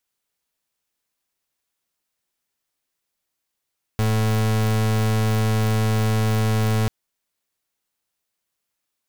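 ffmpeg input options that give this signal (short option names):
-f lavfi -i "aevalsrc='0.106*(2*lt(mod(109*t,1),0.36)-1)':d=2.89:s=44100"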